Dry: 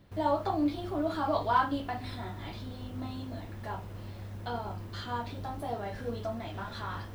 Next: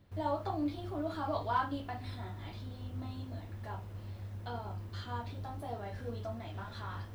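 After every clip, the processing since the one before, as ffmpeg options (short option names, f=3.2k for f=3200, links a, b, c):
-af "equalizer=f=91:t=o:w=0.22:g=12,volume=-6dB"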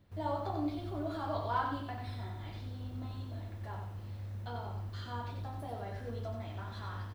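-af "aecho=1:1:91|182|273|364:0.562|0.191|0.065|0.0221,volume=-2dB"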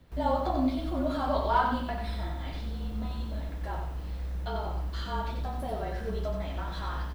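-af "afreqshift=-36,volume=8dB"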